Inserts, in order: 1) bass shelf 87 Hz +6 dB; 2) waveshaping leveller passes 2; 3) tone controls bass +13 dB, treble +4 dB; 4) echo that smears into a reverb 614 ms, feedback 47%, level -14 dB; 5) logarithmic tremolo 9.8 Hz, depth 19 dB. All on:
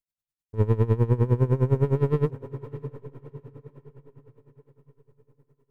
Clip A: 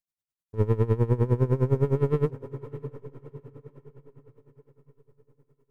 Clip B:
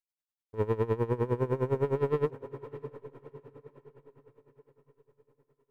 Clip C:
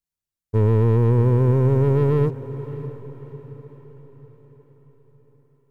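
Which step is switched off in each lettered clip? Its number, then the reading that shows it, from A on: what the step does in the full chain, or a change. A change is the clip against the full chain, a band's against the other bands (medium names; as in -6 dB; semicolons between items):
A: 1, momentary loudness spread change +4 LU; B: 3, 125 Hz band -11.0 dB; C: 5, momentary loudness spread change +5 LU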